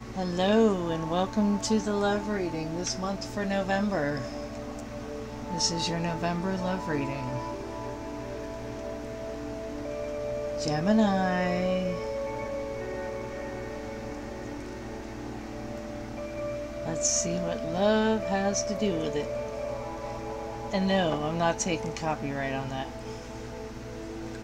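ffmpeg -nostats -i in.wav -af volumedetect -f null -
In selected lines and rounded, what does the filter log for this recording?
mean_volume: -29.9 dB
max_volume: -12.4 dB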